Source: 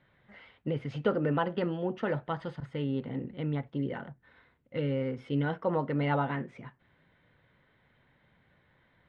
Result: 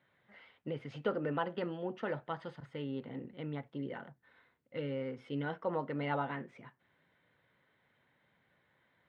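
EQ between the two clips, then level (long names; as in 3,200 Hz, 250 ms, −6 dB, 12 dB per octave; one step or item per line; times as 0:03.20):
high-pass filter 71 Hz
low-shelf EQ 190 Hz −8.5 dB
−4.5 dB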